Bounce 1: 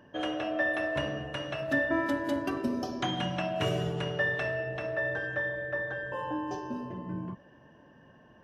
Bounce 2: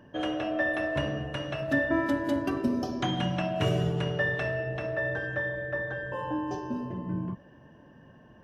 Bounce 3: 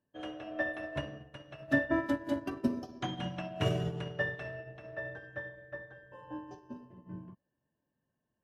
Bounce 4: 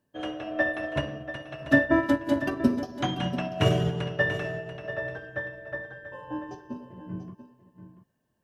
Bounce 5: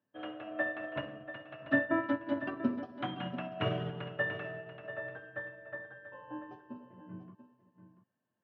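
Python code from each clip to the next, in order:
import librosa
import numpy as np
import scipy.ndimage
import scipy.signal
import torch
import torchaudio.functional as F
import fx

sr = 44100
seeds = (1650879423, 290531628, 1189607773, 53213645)

y1 = fx.low_shelf(x, sr, hz=290.0, db=6.5)
y2 = fx.upward_expand(y1, sr, threshold_db=-43.0, expansion=2.5)
y3 = y2 + 10.0 ** (-12.0 / 20.0) * np.pad(y2, (int(688 * sr / 1000.0), 0))[:len(y2)]
y3 = y3 * librosa.db_to_amplitude(8.0)
y4 = fx.cabinet(y3, sr, low_hz=110.0, low_slope=24, high_hz=3200.0, hz=(150.0, 400.0, 1300.0), db=(-7, -4, 5))
y4 = y4 * librosa.db_to_amplitude(-8.0)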